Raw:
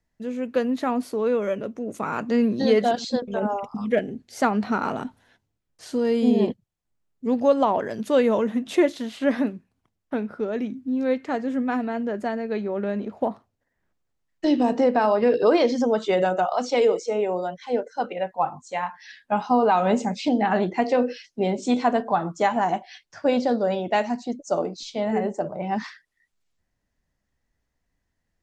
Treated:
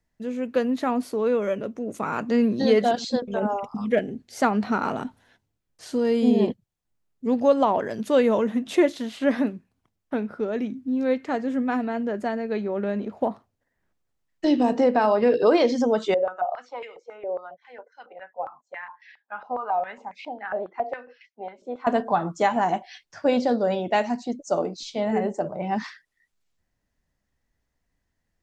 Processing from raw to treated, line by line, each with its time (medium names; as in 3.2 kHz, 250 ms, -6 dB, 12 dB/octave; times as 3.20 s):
16.14–21.87 s: step-sequenced band-pass 7.3 Hz 560–2200 Hz